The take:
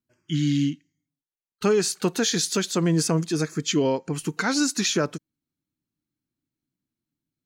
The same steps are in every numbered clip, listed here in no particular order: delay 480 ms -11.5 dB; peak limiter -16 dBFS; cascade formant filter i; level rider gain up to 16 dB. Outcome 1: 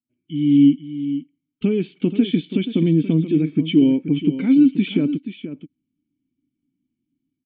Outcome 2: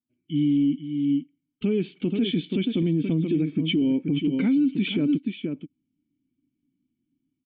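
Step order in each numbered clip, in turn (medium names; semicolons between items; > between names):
peak limiter > cascade formant filter > level rider > delay; cascade formant filter > level rider > delay > peak limiter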